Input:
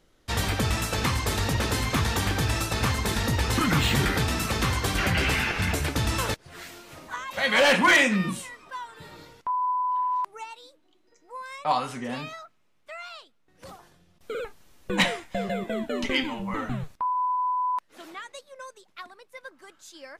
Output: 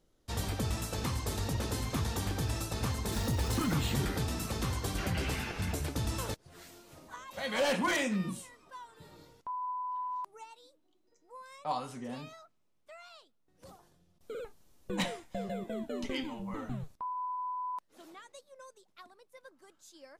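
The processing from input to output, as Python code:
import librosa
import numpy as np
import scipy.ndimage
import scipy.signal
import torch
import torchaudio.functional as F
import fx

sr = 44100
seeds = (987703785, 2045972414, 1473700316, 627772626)

y = fx.zero_step(x, sr, step_db=-31.0, at=(3.12, 3.73))
y = fx.peak_eq(y, sr, hz=2000.0, db=-8.0, octaves=1.9)
y = y * librosa.db_to_amplitude(-7.0)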